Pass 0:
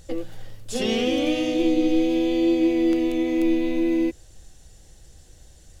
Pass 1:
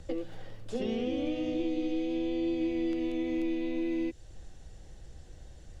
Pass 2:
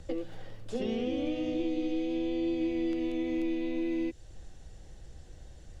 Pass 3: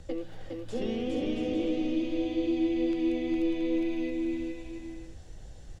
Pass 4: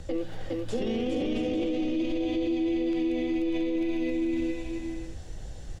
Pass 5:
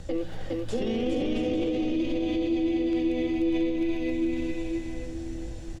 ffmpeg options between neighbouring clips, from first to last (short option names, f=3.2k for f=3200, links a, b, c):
-filter_complex "[0:a]acrossover=split=180|710|2200[a][b][c][d];[a]acompressor=threshold=-40dB:ratio=4[e];[b]acompressor=threshold=-34dB:ratio=4[f];[c]acompressor=threshold=-54dB:ratio=4[g];[d]acompressor=threshold=-46dB:ratio=4[h];[e][f][g][h]amix=inputs=4:normalize=0,aemphasis=mode=reproduction:type=75fm"
-af anull
-af "aecho=1:1:410|676.5|849.7|962.3|1036:0.631|0.398|0.251|0.158|0.1"
-af "alimiter=level_in=4dB:limit=-24dB:level=0:latency=1:release=22,volume=-4dB,volume=6.5dB"
-filter_complex "[0:a]aeval=exprs='val(0)+0.00355*(sin(2*PI*60*n/s)+sin(2*PI*2*60*n/s)/2+sin(2*PI*3*60*n/s)/3+sin(2*PI*4*60*n/s)/4+sin(2*PI*5*60*n/s)/5)':c=same,asplit=2[a][b];[b]adelay=932.9,volume=-10dB,highshelf=f=4k:g=-21[c];[a][c]amix=inputs=2:normalize=0,volume=1dB"